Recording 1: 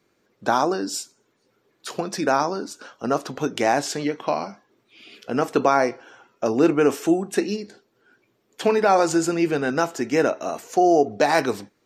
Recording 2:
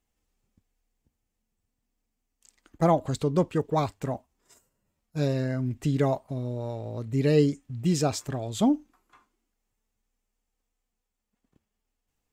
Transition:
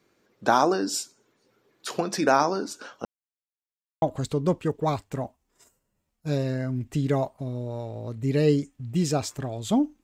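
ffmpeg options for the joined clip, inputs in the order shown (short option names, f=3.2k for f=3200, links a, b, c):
-filter_complex "[0:a]apad=whole_dur=10.03,atrim=end=10.03,asplit=2[a][b];[a]atrim=end=3.05,asetpts=PTS-STARTPTS,afade=t=out:st=3.046:d=0.004:c=hsin[c];[b]atrim=start=3.05:end=4.02,asetpts=PTS-STARTPTS,volume=0[d];[1:a]atrim=start=2.92:end=8.93,asetpts=PTS-STARTPTS,afade=t=in:d=0.004:c=hsin[e];[c][d][e]concat=n=3:v=0:a=1"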